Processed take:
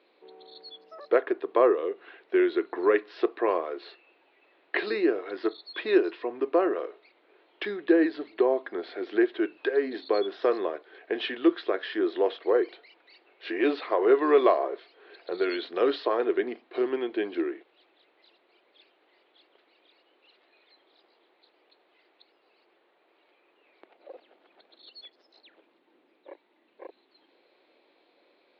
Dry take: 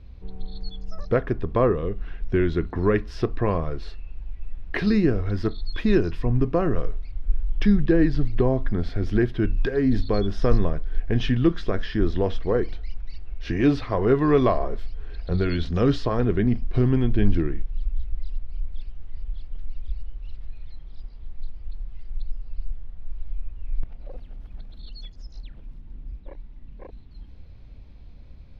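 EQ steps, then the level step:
Chebyshev band-pass filter 340–4,200 Hz, order 4
+1.0 dB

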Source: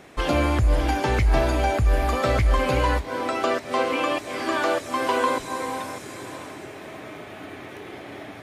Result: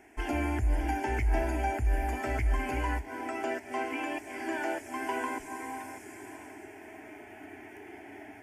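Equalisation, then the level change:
phaser with its sweep stopped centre 790 Hz, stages 8
−6.5 dB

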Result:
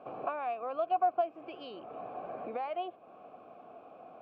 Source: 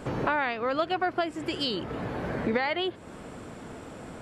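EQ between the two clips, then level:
formant filter a
high-frequency loss of the air 170 metres
parametric band 250 Hz +5.5 dB 3 octaves
0.0 dB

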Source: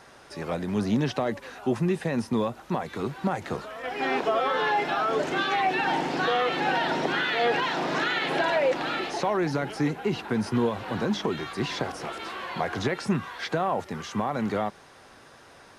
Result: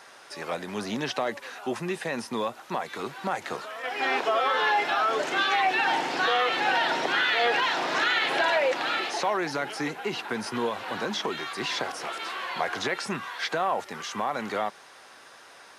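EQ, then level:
high-pass filter 890 Hz 6 dB per octave
+4.0 dB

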